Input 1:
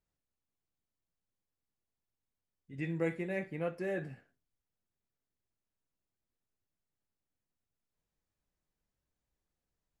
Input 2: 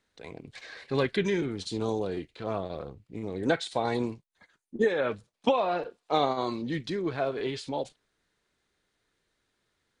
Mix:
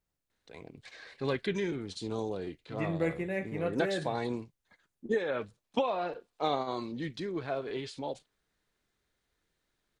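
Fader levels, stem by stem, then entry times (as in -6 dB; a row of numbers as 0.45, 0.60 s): +2.5, -5.0 dB; 0.00, 0.30 s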